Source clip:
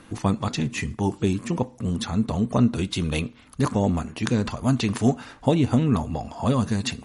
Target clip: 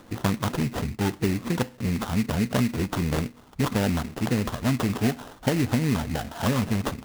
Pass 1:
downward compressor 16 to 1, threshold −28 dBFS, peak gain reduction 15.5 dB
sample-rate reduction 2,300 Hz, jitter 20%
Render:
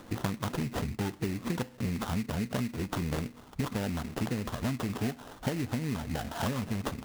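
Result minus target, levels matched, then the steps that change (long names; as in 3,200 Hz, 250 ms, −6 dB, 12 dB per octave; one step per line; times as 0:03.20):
downward compressor: peak gain reduction +9.5 dB
change: downward compressor 16 to 1, threshold −18 dBFS, peak gain reduction 6 dB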